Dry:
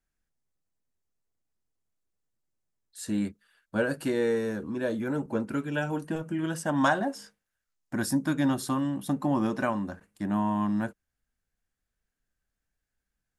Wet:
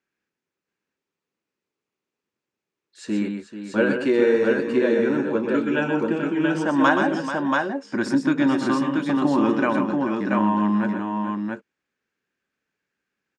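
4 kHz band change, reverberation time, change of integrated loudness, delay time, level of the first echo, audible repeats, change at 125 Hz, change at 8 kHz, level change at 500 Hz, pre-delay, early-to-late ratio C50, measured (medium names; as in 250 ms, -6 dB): +6.0 dB, no reverb, +7.5 dB, 125 ms, -6.5 dB, 3, +2.0 dB, no reading, +9.5 dB, no reverb, no reverb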